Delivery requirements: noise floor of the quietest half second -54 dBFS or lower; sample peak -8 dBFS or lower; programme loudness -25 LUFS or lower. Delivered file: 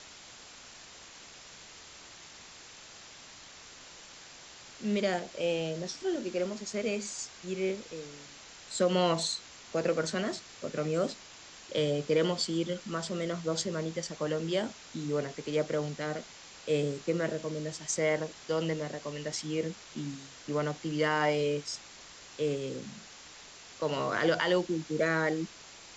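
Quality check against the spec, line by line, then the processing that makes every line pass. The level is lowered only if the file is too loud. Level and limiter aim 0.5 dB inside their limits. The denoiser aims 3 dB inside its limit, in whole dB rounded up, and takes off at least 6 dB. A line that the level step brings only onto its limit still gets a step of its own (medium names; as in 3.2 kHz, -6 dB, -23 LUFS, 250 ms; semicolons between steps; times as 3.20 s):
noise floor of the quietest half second -51 dBFS: fail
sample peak -14.5 dBFS: pass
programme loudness -32.5 LUFS: pass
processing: noise reduction 6 dB, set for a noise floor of -51 dBFS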